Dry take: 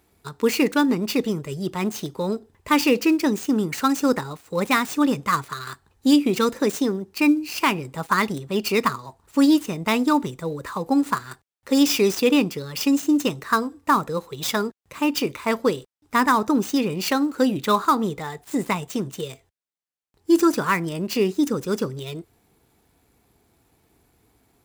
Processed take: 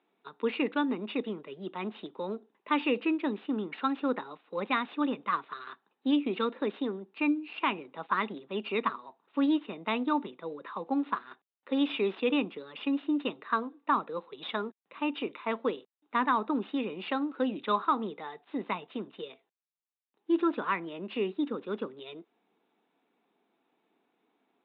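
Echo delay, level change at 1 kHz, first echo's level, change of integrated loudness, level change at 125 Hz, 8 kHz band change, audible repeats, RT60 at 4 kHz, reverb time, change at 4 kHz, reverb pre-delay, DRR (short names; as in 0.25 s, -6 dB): none, -8.0 dB, none, -10.0 dB, -17.0 dB, under -40 dB, none, none, none, -11.5 dB, none, none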